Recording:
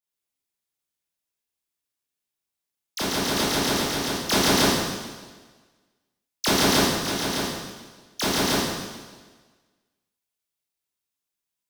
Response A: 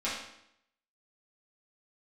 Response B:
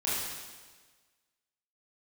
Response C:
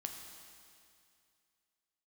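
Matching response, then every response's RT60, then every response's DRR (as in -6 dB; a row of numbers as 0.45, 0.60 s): B; 0.75, 1.4, 2.4 s; -10.0, -9.5, 3.0 dB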